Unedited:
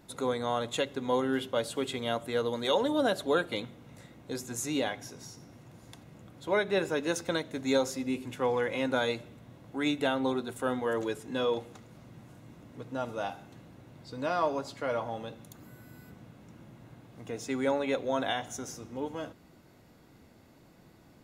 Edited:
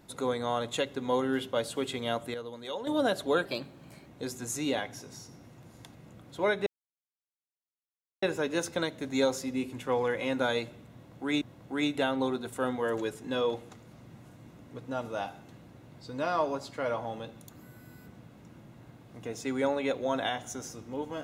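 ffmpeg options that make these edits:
-filter_complex "[0:a]asplit=7[s0][s1][s2][s3][s4][s5][s6];[s0]atrim=end=2.342[s7];[s1]atrim=start=2.338:end=2.872,asetpts=PTS-STARTPTS,volume=0.316[s8];[s2]atrim=start=2.868:end=3.454[s9];[s3]atrim=start=3.45:end=4.15,asetpts=PTS-STARTPTS,asetrate=50274,aresample=44100[s10];[s4]atrim=start=4.146:end=6.75,asetpts=PTS-STARTPTS,afade=t=out:st=2.6:d=0.004:c=hsin,apad=pad_dur=1.56[s11];[s5]atrim=start=6.75:end=9.942,asetpts=PTS-STARTPTS,afade=t=in:d=0.004:c=hsin[s12];[s6]atrim=start=9.448[s13];[s7][s8]acrossfade=d=0.004:c1=hsin:c2=hsin[s14];[s14][s9]acrossfade=d=0.004:c1=hsin:c2=hsin[s15];[s15][s10]acrossfade=d=0.004:c1=hsin:c2=hsin[s16];[s11][s12]concat=n=2:v=0:a=1[s17];[s16][s17]acrossfade=d=0.004:c1=hsin:c2=hsin[s18];[s18][s13]acrossfade=d=0.004:c1=hsin:c2=hsin"

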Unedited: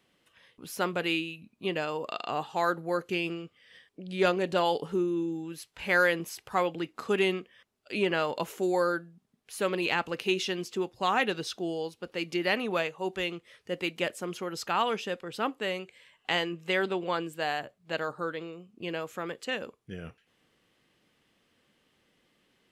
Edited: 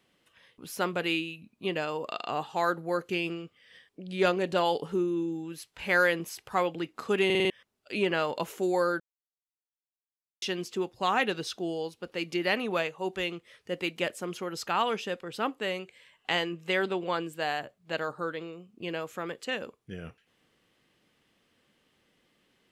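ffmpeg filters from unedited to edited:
-filter_complex "[0:a]asplit=8[s0][s1][s2][s3][s4][s5][s6][s7];[s0]atrim=end=7.302[s8];[s1]atrim=start=7.248:end=7.302[s9];[s2]atrim=start=7.248:end=7.302[s10];[s3]atrim=start=7.248:end=7.302[s11];[s4]atrim=start=7.248:end=7.302[s12];[s5]atrim=start=7.498:end=9,asetpts=PTS-STARTPTS,afade=t=out:st=1.498:d=0.004:c=hsin[s13];[s6]atrim=start=9:end=10.42,asetpts=PTS-STARTPTS,volume=0[s14];[s7]atrim=start=10.42,asetpts=PTS-STARTPTS,afade=t=in:d=0.004:c=hsin[s15];[s8][s9]acrossfade=d=0.004:c1=hsin:c2=hsin[s16];[s16][s10]acrossfade=d=0.004:c1=hsin:c2=hsin[s17];[s17][s11]acrossfade=d=0.004:c1=hsin:c2=hsin[s18];[s18][s12]acrossfade=d=0.004:c1=hsin:c2=hsin[s19];[s13][s14][s15]concat=n=3:v=0:a=1[s20];[s19][s20]acrossfade=d=0.004:c1=hsin:c2=hsin"

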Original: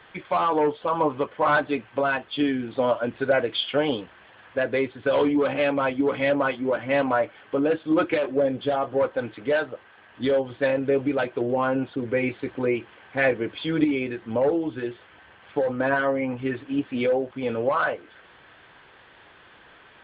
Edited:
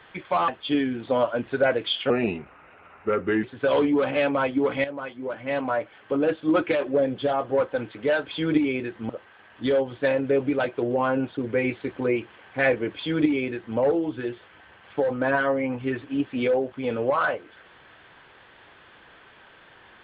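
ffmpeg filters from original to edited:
-filter_complex "[0:a]asplit=7[s0][s1][s2][s3][s4][s5][s6];[s0]atrim=end=0.482[s7];[s1]atrim=start=2.158:end=3.784[s8];[s2]atrim=start=3.78:end=4.86,asetpts=PTS-STARTPTS,asetrate=35721,aresample=44100[s9];[s3]atrim=start=4.856:end=6.27,asetpts=PTS-STARTPTS,afade=t=out:st=1.41:d=0.004:c=hsin:silence=0.211349[s10];[s4]atrim=start=6.27:end=9.682,asetpts=PTS-STARTPTS,afade=t=in:d=1.49:silence=0.211349[s11];[s5]atrim=start=13.518:end=14.362[s12];[s6]atrim=start=9.678[s13];[s7][s8]acrossfade=d=0.004:c1=hsin:c2=hsin[s14];[s14][s9]acrossfade=d=0.004:c1=hsin:c2=hsin[s15];[s10][s11]concat=n=2:v=0:a=1[s16];[s15][s16]acrossfade=d=0.004:c1=hsin:c2=hsin[s17];[s17][s12]acrossfade=d=0.004:c1=hsin:c2=hsin[s18];[s18][s13]acrossfade=d=0.004:c1=hsin:c2=hsin"

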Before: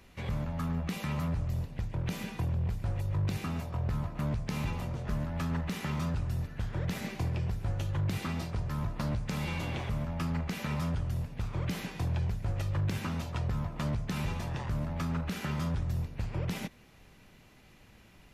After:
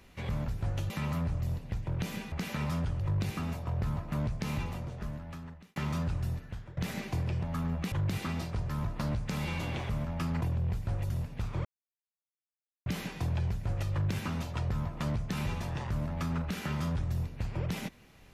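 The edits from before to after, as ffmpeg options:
-filter_complex "[0:a]asplit=12[s0][s1][s2][s3][s4][s5][s6][s7][s8][s9][s10][s11];[s0]atrim=end=0.482[s12];[s1]atrim=start=7.498:end=7.922[s13];[s2]atrim=start=0.968:end=2.392[s14];[s3]atrim=start=10.418:end=11.102[s15];[s4]atrim=start=3.068:end=5.83,asetpts=PTS-STARTPTS,afade=t=out:st=1.492:d=1.27[s16];[s5]atrim=start=5.83:end=6.84,asetpts=PTS-STARTPTS,afade=t=in:d=0.004:c=hsin,afade=t=out:st=0.51:d=0.5:silence=0.0891251[s17];[s6]atrim=start=6.84:end=7.502,asetpts=PTS-STARTPTS,afade=t=in:d=0.004:c=hsin:silence=0.0891251[s18];[s7]atrim=start=0.478:end=0.972[s19];[s8]atrim=start=7.918:end=10.422[s20];[s9]atrim=start=2.388:end=3.072[s21];[s10]atrim=start=11.098:end=11.65,asetpts=PTS-STARTPTS,afade=t=out:st=0.548:d=0.004:c=hsin,apad=pad_dur=1.21[s22];[s11]atrim=start=11.65,asetpts=PTS-STARTPTS,afade=t=in:d=0.004:c=hsin[s23];[s12][s13]acrossfade=d=0.004:c1=hsin:c2=hsin[s24];[s24][s14]acrossfade=d=0.004:c1=hsin:c2=hsin[s25];[s25][s15]acrossfade=d=0.004:c1=hsin:c2=hsin[s26];[s16][s17][s18]concat=n=3:v=0:a=1[s27];[s26][s27]acrossfade=d=0.004:c1=hsin:c2=hsin[s28];[s28][s19]acrossfade=d=0.004:c1=hsin:c2=hsin[s29];[s29][s20]acrossfade=d=0.004:c1=hsin:c2=hsin[s30];[s30][s21]acrossfade=d=0.004:c1=hsin:c2=hsin[s31];[s22][s23]concat=n=2:v=0:a=1[s32];[s31][s32]acrossfade=d=0.004:c1=hsin:c2=hsin"

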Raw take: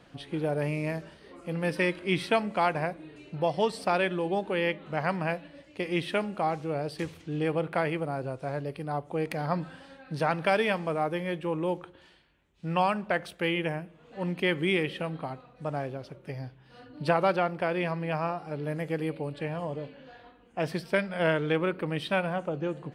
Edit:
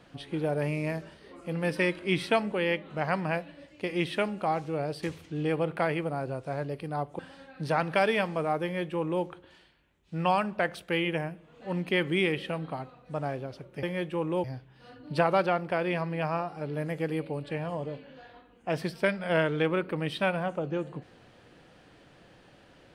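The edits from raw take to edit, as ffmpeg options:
-filter_complex "[0:a]asplit=5[s0][s1][s2][s3][s4];[s0]atrim=end=2.522[s5];[s1]atrim=start=4.478:end=9.152[s6];[s2]atrim=start=9.698:end=16.342[s7];[s3]atrim=start=11.138:end=11.752[s8];[s4]atrim=start=16.338[s9];[s5][s6]acrossfade=d=0.004:c1=hsin:c2=hsin[s10];[s10][s7]acrossfade=d=0.004:c1=hsin:c2=hsin[s11];[s11][s8]acrossfade=d=0.004:c1=hsin:c2=hsin[s12];[s12][s9]acrossfade=d=0.004:c1=hsin:c2=hsin"

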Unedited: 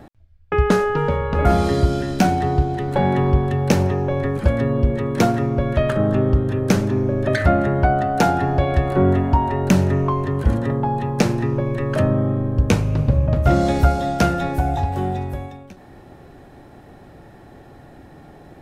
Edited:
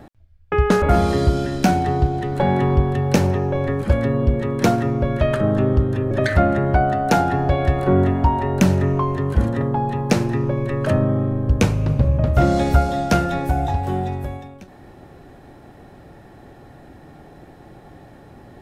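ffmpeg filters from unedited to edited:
-filter_complex "[0:a]asplit=3[s0][s1][s2];[s0]atrim=end=0.822[s3];[s1]atrim=start=1.378:end=6.672[s4];[s2]atrim=start=7.198[s5];[s3][s4]acrossfade=d=0.004:c1=hsin:c2=hsin[s6];[s6][s5]acrossfade=d=0.004:c1=hsin:c2=hsin"

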